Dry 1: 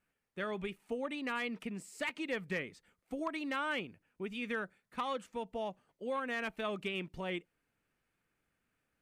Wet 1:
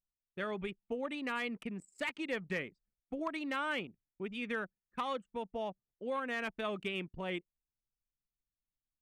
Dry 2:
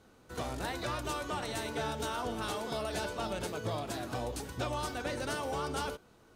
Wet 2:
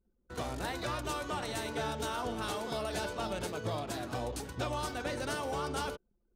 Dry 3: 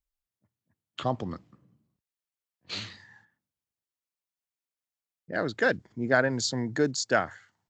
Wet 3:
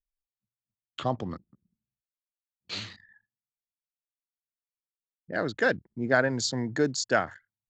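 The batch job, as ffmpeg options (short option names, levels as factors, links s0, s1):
-af "anlmdn=0.00631"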